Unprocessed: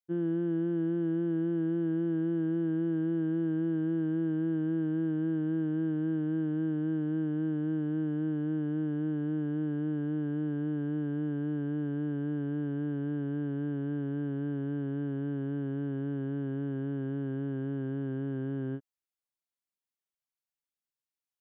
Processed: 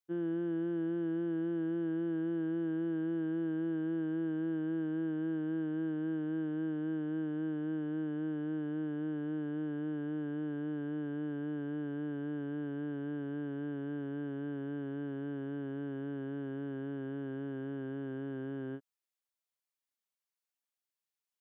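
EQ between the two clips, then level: high-pass 400 Hz 6 dB/octave; 0.0 dB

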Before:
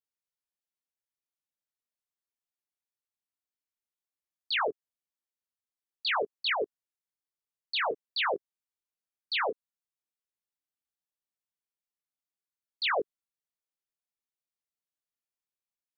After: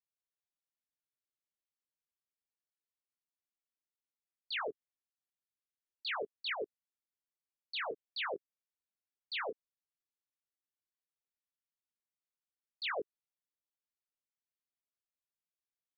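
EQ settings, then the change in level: distance through air 66 m; peaking EQ 890 Hz -5 dB; -7.0 dB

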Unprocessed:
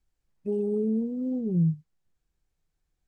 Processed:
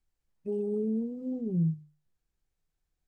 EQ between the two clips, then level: hum notches 50/100/150/200/250/300/350 Hz; -3.5 dB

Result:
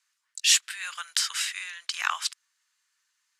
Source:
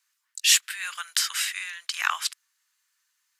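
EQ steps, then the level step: low-pass 9.1 kHz 12 dB/octave; dynamic bell 1.9 kHz, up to -3 dB, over -37 dBFS, Q 0.99; 0.0 dB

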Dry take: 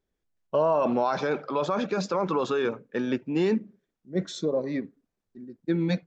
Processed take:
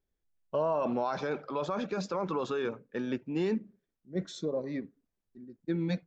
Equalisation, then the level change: bass shelf 78 Hz +8 dB; -6.5 dB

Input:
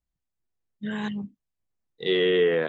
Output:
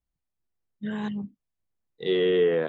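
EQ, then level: dynamic bell 2 kHz, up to -4 dB, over -41 dBFS, Q 1.2; treble shelf 2.9 kHz -6.5 dB; 0.0 dB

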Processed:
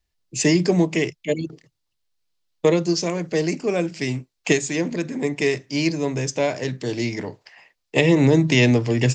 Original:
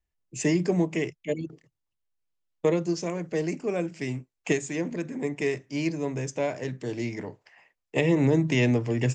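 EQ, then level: peaking EQ 4.4 kHz +9 dB 1 oct; +6.0 dB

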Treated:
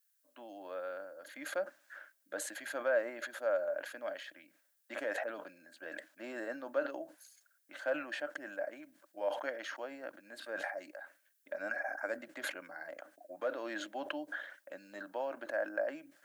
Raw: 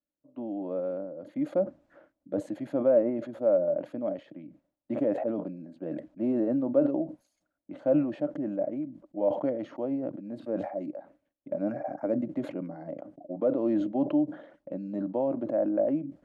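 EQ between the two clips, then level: high-pass 800 Hz 6 dB/octave; differentiator; peaking EQ 1.6 kHz +14.5 dB 0.4 oct; +17.0 dB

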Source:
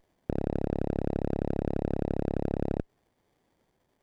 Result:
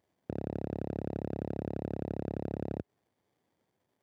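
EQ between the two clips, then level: high-pass 78 Hz 24 dB/octave; -6.0 dB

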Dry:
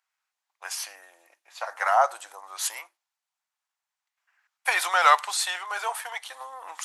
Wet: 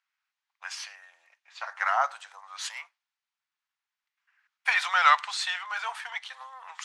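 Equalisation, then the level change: high-pass 1.3 kHz 12 dB/octave; distance through air 130 m; +2.5 dB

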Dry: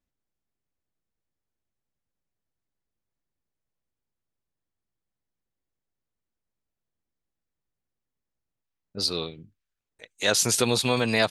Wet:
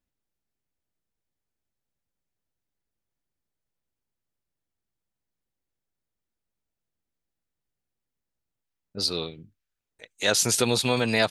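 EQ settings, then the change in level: band-stop 1.1 kHz, Q 19; 0.0 dB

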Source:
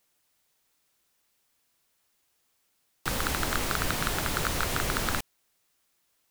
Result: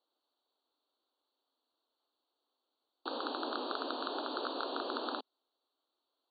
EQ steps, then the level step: brick-wall FIR band-pass 240–4600 Hz; Butterworth band-stop 2.1 kHz, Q 0.88; -3.0 dB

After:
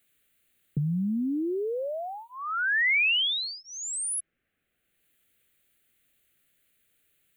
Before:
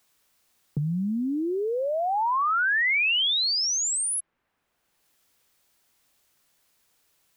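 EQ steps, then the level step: static phaser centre 2.3 kHz, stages 4; 0.0 dB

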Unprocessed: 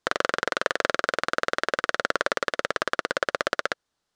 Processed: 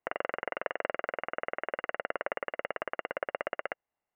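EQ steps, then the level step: rippled Chebyshev low-pass 2.9 kHz, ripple 9 dB; -3.5 dB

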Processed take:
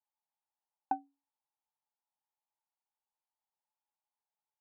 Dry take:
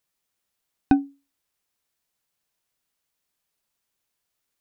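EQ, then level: band-pass filter 860 Hz, Q 9.8; +2.0 dB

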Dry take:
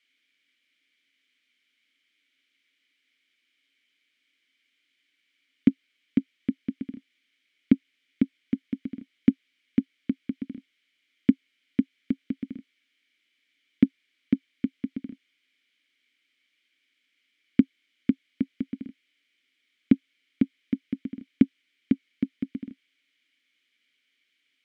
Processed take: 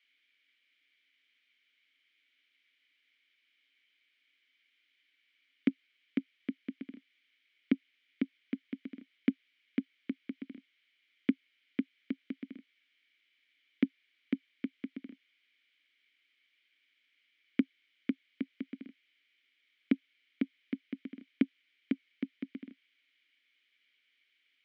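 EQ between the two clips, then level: band-pass 310–2800 Hz; treble shelf 2.2 kHz +11.5 dB; -4.5 dB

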